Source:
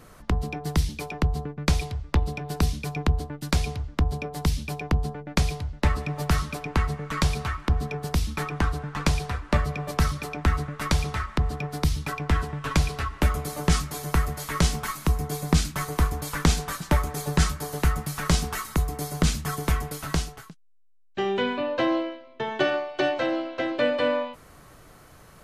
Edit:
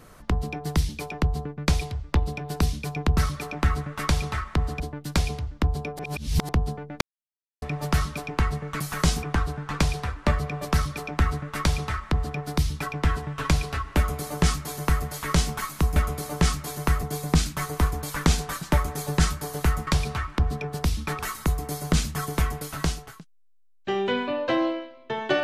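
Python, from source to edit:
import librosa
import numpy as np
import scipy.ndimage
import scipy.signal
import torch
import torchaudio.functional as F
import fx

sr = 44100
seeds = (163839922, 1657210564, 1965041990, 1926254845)

y = fx.edit(x, sr, fx.reverse_span(start_s=4.36, length_s=0.5),
    fx.silence(start_s=5.38, length_s=0.61),
    fx.swap(start_s=7.17, length_s=1.32, other_s=18.06, other_length_s=0.43),
    fx.duplicate(start_s=9.99, length_s=1.63, to_s=3.17),
    fx.duplicate(start_s=13.23, length_s=1.07, to_s=15.22), tone=tone)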